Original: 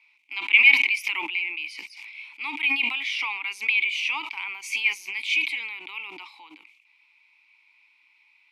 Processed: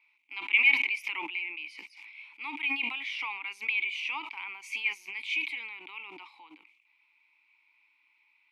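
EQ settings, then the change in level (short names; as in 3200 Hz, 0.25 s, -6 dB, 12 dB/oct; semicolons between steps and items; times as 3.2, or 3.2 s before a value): high shelf 3100 Hz -9 dB; bell 5000 Hz -2 dB; -3.5 dB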